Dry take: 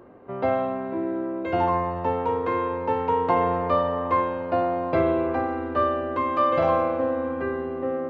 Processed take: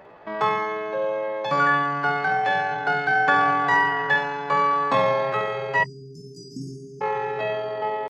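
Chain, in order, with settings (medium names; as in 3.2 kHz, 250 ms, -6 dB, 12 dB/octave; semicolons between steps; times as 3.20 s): flutter echo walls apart 11 m, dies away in 0.52 s; spectral selection erased 5.84–7.04 s, 240–2800 Hz; pitch shift +8.5 st; trim +1.5 dB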